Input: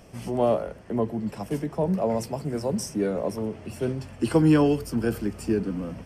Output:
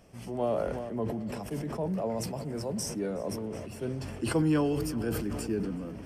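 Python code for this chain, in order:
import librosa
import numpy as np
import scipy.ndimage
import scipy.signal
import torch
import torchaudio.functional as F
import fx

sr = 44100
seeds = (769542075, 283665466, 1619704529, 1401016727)

y = fx.echo_feedback(x, sr, ms=370, feedback_pct=52, wet_db=-18.5)
y = fx.sustainer(y, sr, db_per_s=29.0)
y = y * 10.0 ** (-8.0 / 20.0)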